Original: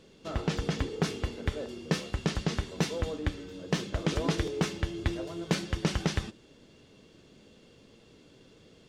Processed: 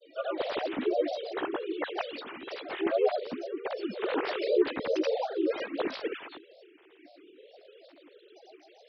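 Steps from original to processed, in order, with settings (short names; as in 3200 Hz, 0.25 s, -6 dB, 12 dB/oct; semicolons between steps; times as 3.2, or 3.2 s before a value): sine-wave speech; grains 0.1 s, grains 20/s, pitch spread up and down by 7 st; harmoniser +3 st -2 dB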